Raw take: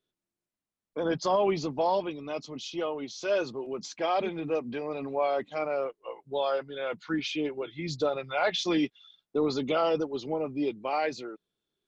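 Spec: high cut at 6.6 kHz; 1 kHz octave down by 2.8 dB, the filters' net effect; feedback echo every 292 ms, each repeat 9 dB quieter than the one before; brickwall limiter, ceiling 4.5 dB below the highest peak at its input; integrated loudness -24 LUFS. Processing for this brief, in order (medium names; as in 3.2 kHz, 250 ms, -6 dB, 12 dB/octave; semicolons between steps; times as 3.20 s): low-pass 6.6 kHz; peaking EQ 1 kHz -4 dB; peak limiter -21.5 dBFS; feedback delay 292 ms, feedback 35%, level -9 dB; trim +8.5 dB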